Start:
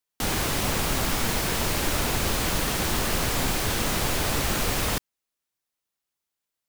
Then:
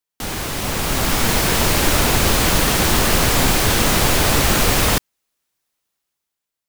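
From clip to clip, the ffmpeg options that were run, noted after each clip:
-af "dynaudnorm=f=270:g=7:m=11dB"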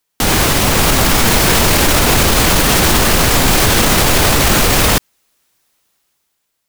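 -af "alimiter=level_in=14.5dB:limit=-1dB:release=50:level=0:latency=1,volume=-1dB"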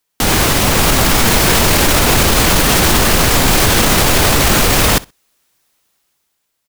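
-af "aecho=1:1:63|126:0.075|0.0127"

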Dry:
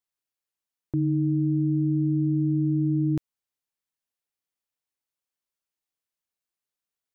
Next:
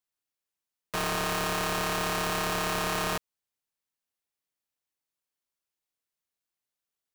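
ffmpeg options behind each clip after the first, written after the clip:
-af "aeval=exprs='(mod(15.8*val(0)+1,2)-1)/15.8':c=same"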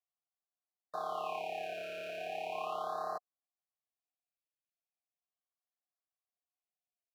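-filter_complex "[0:a]asplit=3[a][b][c];[a]bandpass=f=730:t=q:w=8,volume=0dB[d];[b]bandpass=f=1.09k:t=q:w=8,volume=-6dB[e];[c]bandpass=f=2.44k:t=q:w=8,volume=-9dB[f];[d][e][f]amix=inputs=3:normalize=0,aexciter=amount=1.5:drive=8.7:freq=11k,afftfilt=real='re*(1-between(b*sr/1024,950*pow(2900/950,0.5+0.5*sin(2*PI*0.38*pts/sr))/1.41,950*pow(2900/950,0.5+0.5*sin(2*PI*0.38*pts/sr))*1.41))':imag='im*(1-between(b*sr/1024,950*pow(2900/950,0.5+0.5*sin(2*PI*0.38*pts/sr))/1.41,950*pow(2900/950,0.5+0.5*sin(2*PI*0.38*pts/sr))*1.41))':win_size=1024:overlap=0.75,volume=2dB"

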